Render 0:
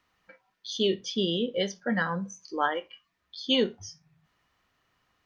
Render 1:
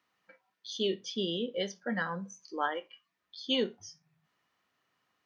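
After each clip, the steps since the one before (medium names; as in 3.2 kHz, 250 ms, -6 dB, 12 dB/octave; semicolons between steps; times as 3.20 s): high-pass 160 Hz 12 dB/octave; trim -5 dB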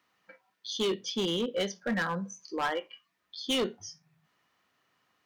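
hard clipper -29.5 dBFS, distortion -10 dB; trim +4.5 dB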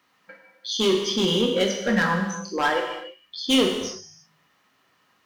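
gated-style reverb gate 370 ms falling, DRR 1.5 dB; trim +6.5 dB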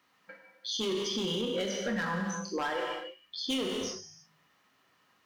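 peak limiter -20.5 dBFS, peak gain reduction 10.5 dB; trim -4 dB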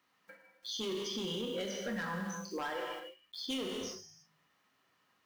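block-companded coder 5-bit; trim -5.5 dB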